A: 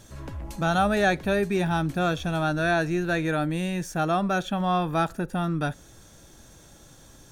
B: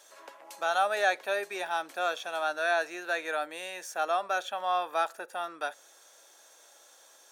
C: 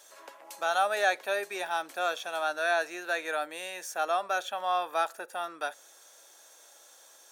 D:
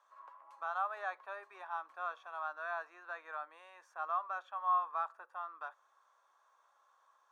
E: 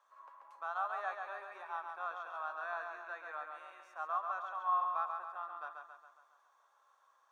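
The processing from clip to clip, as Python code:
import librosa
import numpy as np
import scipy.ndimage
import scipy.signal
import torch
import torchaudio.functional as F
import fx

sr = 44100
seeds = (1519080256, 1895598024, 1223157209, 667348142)

y1 = scipy.signal.sosfilt(scipy.signal.butter(4, 520.0, 'highpass', fs=sr, output='sos'), x)
y1 = y1 * 10.0 ** (-2.5 / 20.0)
y2 = fx.high_shelf(y1, sr, hz=7900.0, db=5.0)
y3 = fx.bandpass_q(y2, sr, hz=1100.0, q=8.3)
y3 = y3 * 10.0 ** (3.0 / 20.0)
y4 = fx.echo_feedback(y3, sr, ms=137, feedback_pct=53, wet_db=-5)
y4 = y4 * 10.0 ** (-1.5 / 20.0)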